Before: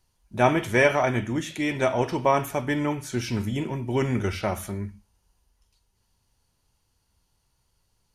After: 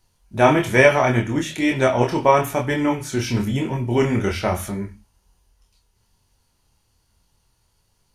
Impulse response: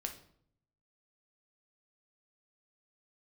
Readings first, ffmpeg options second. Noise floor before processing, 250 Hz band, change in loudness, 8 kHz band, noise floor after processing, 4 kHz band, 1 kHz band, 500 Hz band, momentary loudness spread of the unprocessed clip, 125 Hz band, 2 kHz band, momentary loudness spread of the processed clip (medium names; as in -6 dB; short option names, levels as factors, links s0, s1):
-72 dBFS, +5.5 dB, +5.5 dB, +5.5 dB, -66 dBFS, +5.5 dB, +5.5 dB, +6.0 dB, 10 LU, +5.5 dB, +5.5 dB, 10 LU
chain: -af "flanger=delay=22.5:depth=4.8:speed=1.1,volume=2.66"